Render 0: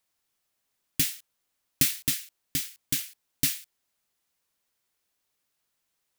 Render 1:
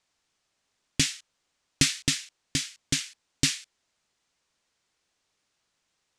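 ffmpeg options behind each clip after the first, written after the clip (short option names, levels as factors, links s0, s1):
-af "lowpass=f=7700:w=0.5412,lowpass=f=7700:w=1.3066,volume=1.88"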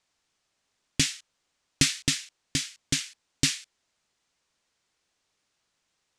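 -af anull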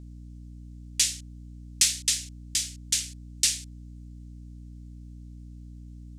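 -af "aderivative,aeval=exprs='val(0)+0.00447*(sin(2*PI*60*n/s)+sin(2*PI*2*60*n/s)/2+sin(2*PI*3*60*n/s)/3+sin(2*PI*4*60*n/s)/4+sin(2*PI*5*60*n/s)/5)':c=same,volume=1.78"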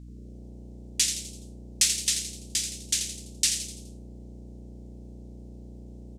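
-filter_complex "[0:a]asplit=6[s0][s1][s2][s3][s4][s5];[s1]adelay=84,afreqshift=150,volume=0.398[s6];[s2]adelay=168,afreqshift=300,volume=0.184[s7];[s3]adelay=252,afreqshift=450,volume=0.0841[s8];[s4]adelay=336,afreqshift=600,volume=0.0389[s9];[s5]adelay=420,afreqshift=750,volume=0.0178[s10];[s0][s6][s7][s8][s9][s10]amix=inputs=6:normalize=0,volume=0.891"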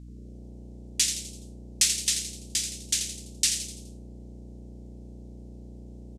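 -af "aresample=32000,aresample=44100"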